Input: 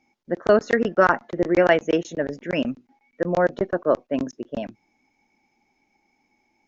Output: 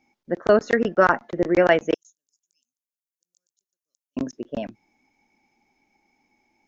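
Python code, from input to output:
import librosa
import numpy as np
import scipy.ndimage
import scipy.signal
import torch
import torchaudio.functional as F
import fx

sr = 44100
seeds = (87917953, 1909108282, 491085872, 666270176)

y = fx.cheby2_highpass(x, sr, hz=2100.0, order=4, stop_db=70, at=(1.94, 4.17))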